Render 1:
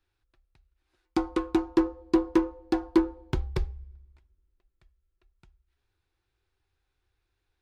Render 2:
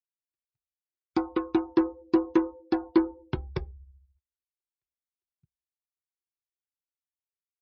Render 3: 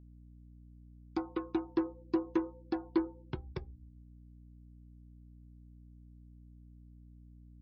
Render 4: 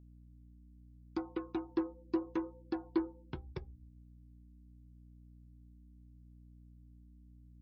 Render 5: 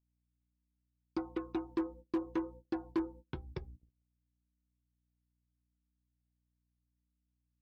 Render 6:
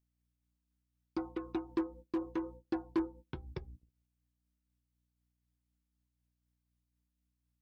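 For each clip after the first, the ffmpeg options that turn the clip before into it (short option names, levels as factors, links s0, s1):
-af "highpass=86,afftdn=nr=34:nf=-44"
-af "aeval=exprs='val(0)+0.00562*(sin(2*PI*60*n/s)+sin(2*PI*2*60*n/s)/2+sin(2*PI*3*60*n/s)/3+sin(2*PI*4*60*n/s)/4+sin(2*PI*5*60*n/s)/5)':c=same,volume=0.376"
-af "flanger=delay=0.3:depth=3.9:regen=-74:speed=0.77:shape=sinusoidal,volume=1.19"
-af "asoftclip=type=hard:threshold=0.0398,agate=range=0.0501:threshold=0.00251:ratio=16:detection=peak,volume=1.12"
-af "tremolo=f=4:d=0.31,volume=1.19"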